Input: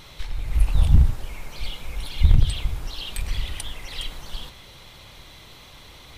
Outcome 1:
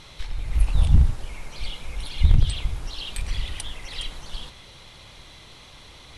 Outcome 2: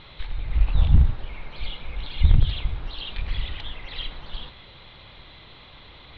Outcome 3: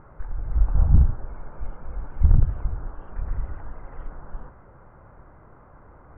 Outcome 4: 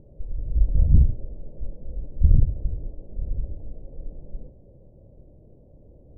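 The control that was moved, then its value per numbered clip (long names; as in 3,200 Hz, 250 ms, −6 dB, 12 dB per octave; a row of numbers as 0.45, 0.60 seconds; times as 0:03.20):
elliptic low-pass filter, frequency: 11,000, 3,900, 1,500, 580 Hertz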